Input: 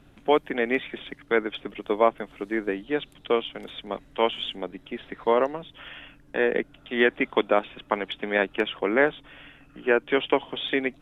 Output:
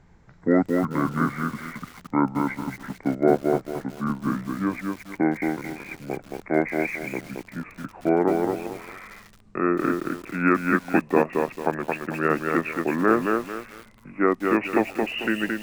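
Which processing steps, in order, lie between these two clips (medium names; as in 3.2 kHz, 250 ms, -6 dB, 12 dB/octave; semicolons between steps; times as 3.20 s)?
gliding tape speed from 60% -> 81%; bit-crushed delay 222 ms, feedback 35%, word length 7-bit, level -3.5 dB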